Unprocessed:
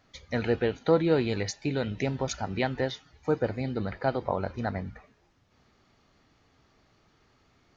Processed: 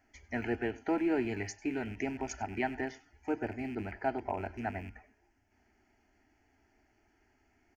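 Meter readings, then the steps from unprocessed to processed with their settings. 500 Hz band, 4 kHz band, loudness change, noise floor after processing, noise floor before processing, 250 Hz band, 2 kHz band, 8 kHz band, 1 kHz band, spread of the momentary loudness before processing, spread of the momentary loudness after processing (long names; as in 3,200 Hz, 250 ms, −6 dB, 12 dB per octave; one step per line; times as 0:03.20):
−9.0 dB, −13.5 dB, −6.5 dB, −72 dBFS, −66 dBFS, −4.0 dB, −3.0 dB, can't be measured, −4.0 dB, 8 LU, 8 LU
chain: loose part that buzzes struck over −34 dBFS, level −34 dBFS
phaser with its sweep stopped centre 770 Hz, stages 8
single-tap delay 97 ms −20.5 dB
level −2.5 dB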